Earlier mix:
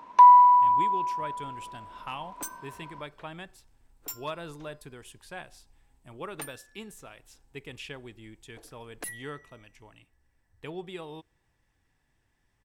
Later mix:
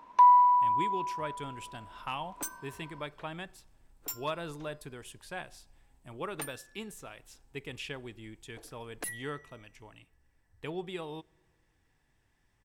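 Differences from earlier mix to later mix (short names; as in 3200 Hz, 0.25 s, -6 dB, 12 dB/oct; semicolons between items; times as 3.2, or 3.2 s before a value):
speech: send +11.0 dB; first sound -5.5 dB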